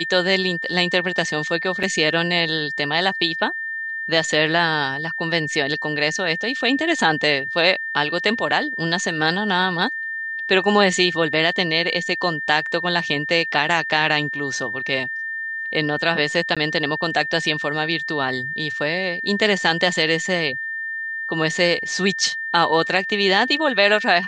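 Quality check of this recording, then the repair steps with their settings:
whistle 1,800 Hz −25 dBFS
0:01.83: drop-out 4 ms
0:16.55–0:16.57: drop-out 16 ms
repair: notch filter 1,800 Hz, Q 30
repair the gap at 0:01.83, 4 ms
repair the gap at 0:16.55, 16 ms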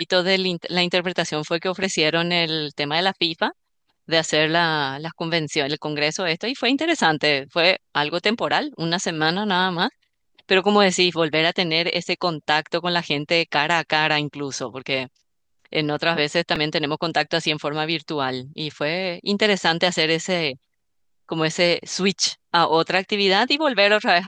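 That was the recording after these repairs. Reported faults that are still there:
none of them is left

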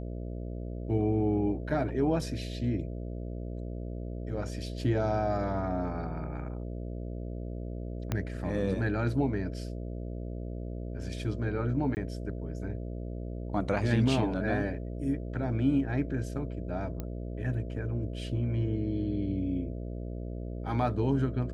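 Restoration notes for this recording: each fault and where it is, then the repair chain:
mains buzz 60 Hz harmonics 11 −37 dBFS
0:08.12: click −16 dBFS
0:11.95–0:11.97: drop-out 19 ms
0:17.00: click −22 dBFS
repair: click removal
hum removal 60 Hz, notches 11
repair the gap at 0:11.95, 19 ms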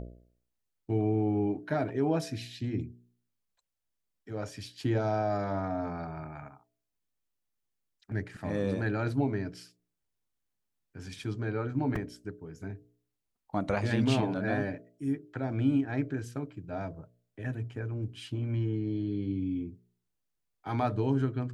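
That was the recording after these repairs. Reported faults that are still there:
0:08.12: click

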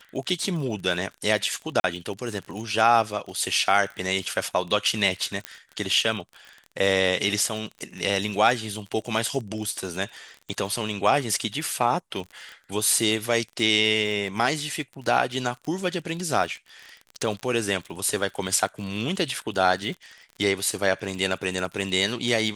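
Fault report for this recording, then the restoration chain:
surface crackle 34 per second −32 dBFS
0:01.80–0:01.84: drop-out 41 ms
0:05.45: click −12 dBFS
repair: click removal
repair the gap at 0:01.80, 41 ms

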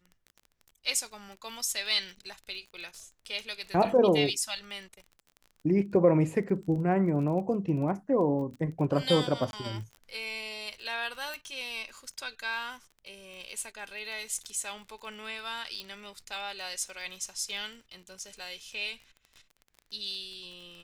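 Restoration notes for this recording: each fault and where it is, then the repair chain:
surface crackle 22 per second −39 dBFS
0:09.51–0:09.53: drop-out 21 ms
0:11.34: click
0:15.80: click −23 dBFS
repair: click removal
repair the gap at 0:09.51, 21 ms

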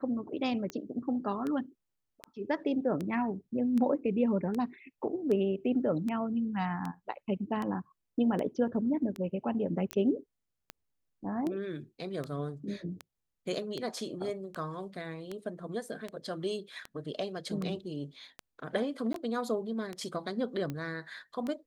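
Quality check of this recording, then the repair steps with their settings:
scratch tick 78 rpm −23 dBFS
0:09.91: click −18 dBFS
0:19.13–0:19.14: drop-out 13 ms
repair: click removal
repair the gap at 0:19.13, 13 ms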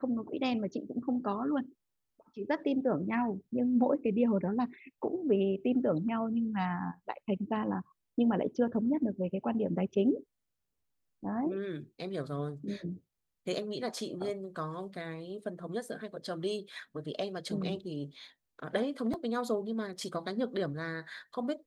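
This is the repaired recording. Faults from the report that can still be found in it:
none of them is left

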